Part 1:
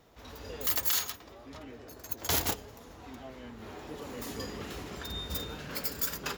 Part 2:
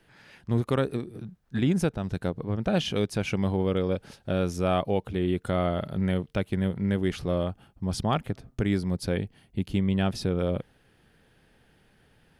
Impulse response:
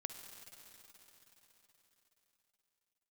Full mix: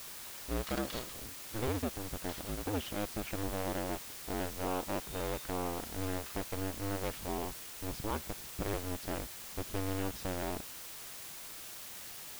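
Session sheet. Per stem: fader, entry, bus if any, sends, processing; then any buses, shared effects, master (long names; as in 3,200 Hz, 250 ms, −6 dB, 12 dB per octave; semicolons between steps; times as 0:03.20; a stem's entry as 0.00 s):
−4.0 dB, 0.00 s, no send, Chebyshev band-pass filter 1,000–4,100 Hz; automatic ducking −13 dB, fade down 1.80 s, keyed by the second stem
−10.5 dB, 0.00 s, no send, sub-harmonics by changed cycles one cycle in 2, inverted; high-shelf EQ 4,400 Hz −10 dB; bit-depth reduction 6 bits, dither triangular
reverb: not used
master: no processing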